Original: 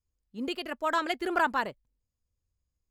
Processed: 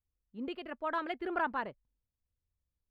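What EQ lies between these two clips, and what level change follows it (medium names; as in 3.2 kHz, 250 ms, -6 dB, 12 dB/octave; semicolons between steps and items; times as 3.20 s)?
distance through air 450 m; treble shelf 6.6 kHz +11.5 dB; -4.5 dB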